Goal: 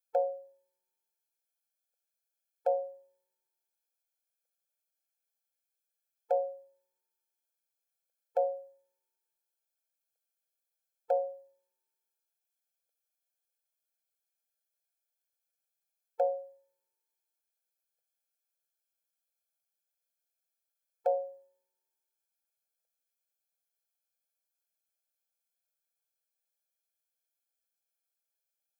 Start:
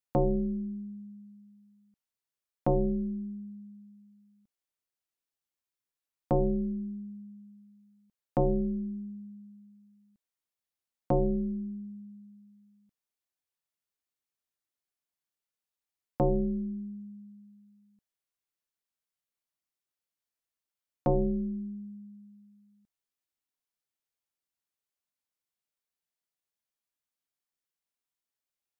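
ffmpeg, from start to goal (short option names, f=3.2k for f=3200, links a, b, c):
-af "lowshelf=f=250:g=11.5,crystalizer=i=1:c=0,afftfilt=real='re*eq(mod(floor(b*sr/1024/440),2),1)':imag='im*eq(mod(floor(b*sr/1024/440),2),1)':win_size=1024:overlap=0.75"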